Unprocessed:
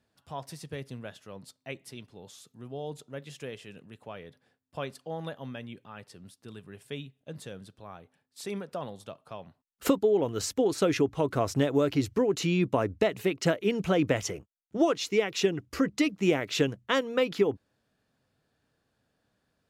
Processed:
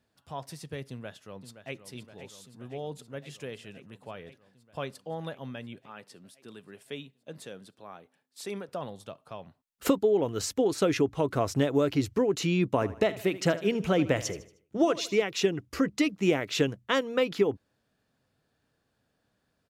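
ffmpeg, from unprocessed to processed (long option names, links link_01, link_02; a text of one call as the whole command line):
ffmpeg -i in.wav -filter_complex "[0:a]asplit=2[link_01][link_02];[link_02]afade=type=in:start_time=0.89:duration=0.01,afade=type=out:start_time=1.78:duration=0.01,aecho=0:1:520|1040|1560|2080|2600|3120|3640|4160|4680|5200|5720|6240:0.281838|0.225471|0.180377|0.144301|0.115441|0.0923528|0.0738822|0.0591058|0.0472846|0.0378277|0.0302622|0.0242097[link_03];[link_01][link_03]amix=inputs=2:normalize=0,asettb=1/sr,asplit=3[link_04][link_05][link_06];[link_04]atrim=end=5.864[link_07];[link_05]atrim=start=5.86:end=8.69,asetpts=PTS-STARTPTS,afade=type=in:duration=0.004:curve=qsin,afade=type=out:start_time=2.826:duration=0.004:curve=qsin,highpass=200[link_08];[link_06]atrim=start=8.686[link_09];[link_07][link_08]acrossfade=duration=0.004:curve1=hsin:curve2=qsin[link_10];[link_10][link_09]acrossfade=duration=0.004:curve1=qsin:curve2=hsin,asettb=1/sr,asplit=3[link_11][link_12][link_13];[link_11]atrim=end=12.714[link_14];[link_12]atrim=start=12.71:end=15.22,asetpts=PTS-STARTPTS,afade=type=in:duration=0.004:curve=qsin,afade=type=out:start_time=2.506:duration=0.004:curve=qsin,aecho=1:1:77|154|231|308:0.158|0.0697|0.0307|0.0135,atrim=end_sample=110691[link_15];[link_13]atrim=start=15.216[link_16];[link_14][link_15]acrossfade=duration=0.004:curve1=hsin:curve2=qsin[link_17];[link_17][link_16]acrossfade=duration=0.004:curve1=qsin:curve2=hsin" out.wav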